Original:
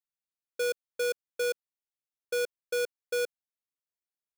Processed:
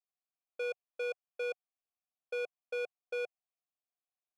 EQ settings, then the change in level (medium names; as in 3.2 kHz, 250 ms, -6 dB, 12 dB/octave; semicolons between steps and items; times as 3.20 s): vowel filter a; peaking EQ 130 Hz +8.5 dB 0.77 oct; +7.5 dB